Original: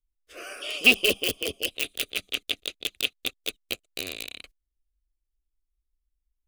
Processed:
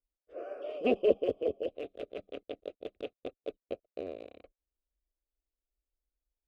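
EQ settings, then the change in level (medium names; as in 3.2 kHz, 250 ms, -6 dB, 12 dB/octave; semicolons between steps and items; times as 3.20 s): band-pass filter 570 Hz, Q 2.4; tilt EQ -4 dB/octave; +2.5 dB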